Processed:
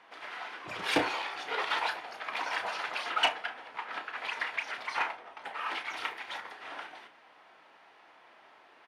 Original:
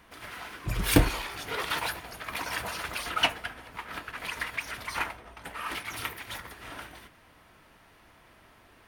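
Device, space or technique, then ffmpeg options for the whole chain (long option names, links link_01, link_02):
intercom: -filter_complex "[0:a]highpass=440,lowpass=4200,equalizer=frequency=810:width_type=o:width=0.27:gain=6,asoftclip=type=tanh:threshold=-15.5dB,asplit=2[link_01][link_02];[link_02]adelay=33,volume=-10dB[link_03];[link_01][link_03]amix=inputs=2:normalize=0"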